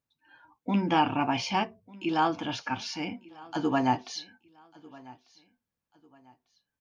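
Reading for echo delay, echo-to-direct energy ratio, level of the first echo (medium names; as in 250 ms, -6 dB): 1196 ms, -22.0 dB, -22.5 dB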